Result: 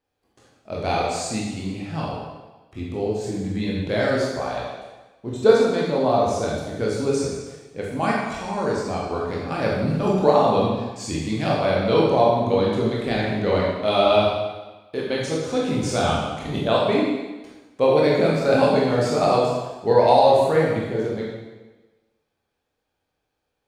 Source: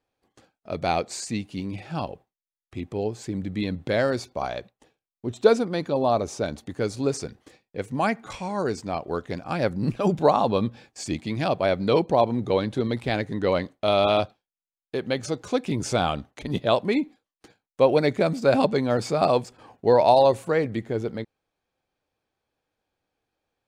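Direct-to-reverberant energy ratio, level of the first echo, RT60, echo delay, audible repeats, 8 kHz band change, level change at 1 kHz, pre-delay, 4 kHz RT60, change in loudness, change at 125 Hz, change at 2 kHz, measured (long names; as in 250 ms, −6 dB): −4.5 dB, no echo audible, 1.2 s, no echo audible, no echo audible, +3.0 dB, +3.5 dB, 16 ms, 1.1 s, +3.0 dB, +3.5 dB, +3.5 dB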